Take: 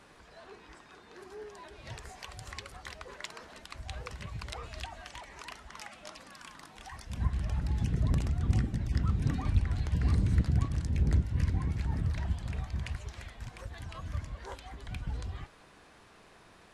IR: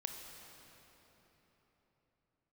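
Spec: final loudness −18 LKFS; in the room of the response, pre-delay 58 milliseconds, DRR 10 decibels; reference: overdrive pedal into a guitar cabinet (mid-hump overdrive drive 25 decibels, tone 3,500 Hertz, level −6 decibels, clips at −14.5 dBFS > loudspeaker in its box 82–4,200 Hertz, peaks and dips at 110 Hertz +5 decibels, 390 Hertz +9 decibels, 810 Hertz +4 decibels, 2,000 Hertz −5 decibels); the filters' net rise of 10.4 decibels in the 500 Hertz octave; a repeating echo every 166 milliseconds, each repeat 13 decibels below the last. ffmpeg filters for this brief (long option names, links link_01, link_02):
-filter_complex "[0:a]equalizer=frequency=500:width_type=o:gain=7,aecho=1:1:166|332|498:0.224|0.0493|0.0108,asplit=2[link_01][link_02];[1:a]atrim=start_sample=2205,adelay=58[link_03];[link_02][link_03]afir=irnorm=-1:irlink=0,volume=-9dB[link_04];[link_01][link_04]amix=inputs=2:normalize=0,asplit=2[link_05][link_06];[link_06]highpass=frequency=720:poles=1,volume=25dB,asoftclip=type=tanh:threshold=-14.5dB[link_07];[link_05][link_07]amix=inputs=2:normalize=0,lowpass=frequency=3500:poles=1,volume=-6dB,highpass=82,equalizer=frequency=110:width_type=q:width=4:gain=5,equalizer=frequency=390:width_type=q:width=4:gain=9,equalizer=frequency=810:width_type=q:width=4:gain=4,equalizer=frequency=2000:width_type=q:width=4:gain=-5,lowpass=frequency=4200:width=0.5412,lowpass=frequency=4200:width=1.3066,volume=9.5dB"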